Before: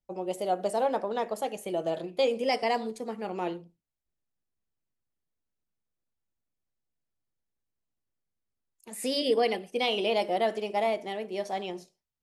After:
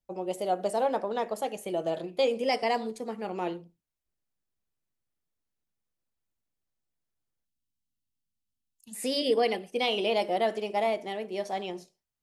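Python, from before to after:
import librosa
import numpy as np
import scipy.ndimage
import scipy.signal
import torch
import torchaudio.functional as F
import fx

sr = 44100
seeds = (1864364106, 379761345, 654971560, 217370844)

y = fx.spec_box(x, sr, start_s=7.46, length_s=1.48, low_hz=320.0, high_hz=2600.0, gain_db=-20)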